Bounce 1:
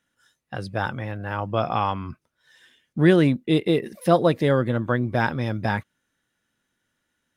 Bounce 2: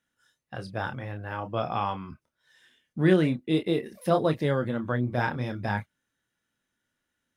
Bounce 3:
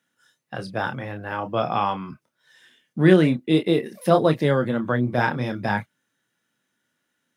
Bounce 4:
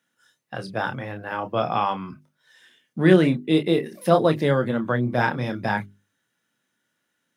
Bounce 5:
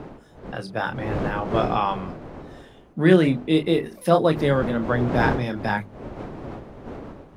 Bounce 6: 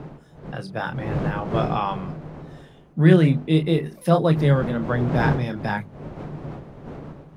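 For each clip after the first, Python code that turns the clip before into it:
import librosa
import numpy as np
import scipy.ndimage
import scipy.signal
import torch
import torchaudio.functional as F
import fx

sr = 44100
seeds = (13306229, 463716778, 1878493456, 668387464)

y1 = fx.chorus_voices(x, sr, voices=2, hz=0.48, base_ms=29, depth_ms=3.8, mix_pct=30)
y1 = y1 * 10.0 ** (-3.0 / 20.0)
y2 = scipy.signal.sosfilt(scipy.signal.butter(4, 120.0, 'highpass', fs=sr, output='sos'), y1)
y2 = y2 * 10.0 ** (6.0 / 20.0)
y3 = fx.hum_notches(y2, sr, base_hz=50, count=8)
y4 = fx.dmg_wind(y3, sr, seeds[0], corner_hz=480.0, level_db=-32.0)
y5 = fx.peak_eq(y4, sr, hz=150.0, db=12.5, octaves=0.34)
y5 = y5 * 10.0 ** (-2.0 / 20.0)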